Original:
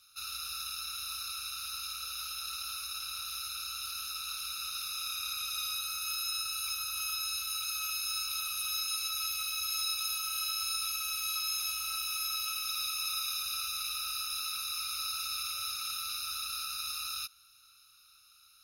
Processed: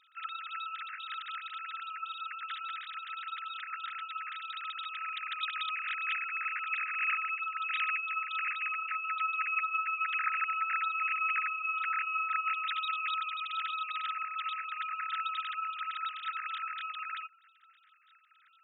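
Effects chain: formants replaced by sine waves; trim +1 dB

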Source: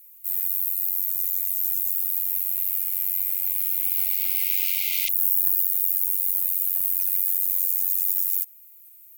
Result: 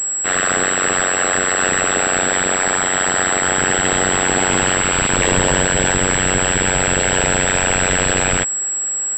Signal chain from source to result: class-D stage that switches slowly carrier 7.7 kHz; trim +7 dB

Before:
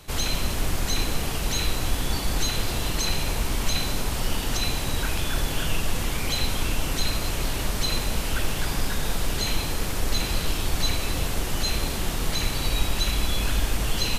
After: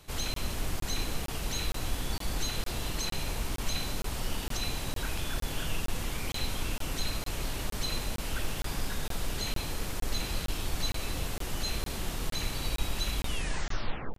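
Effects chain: tape stop on the ending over 1.01 s; speakerphone echo 220 ms, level -27 dB; crackling interface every 0.46 s, samples 1024, zero, from 0.34 s; trim -7.5 dB

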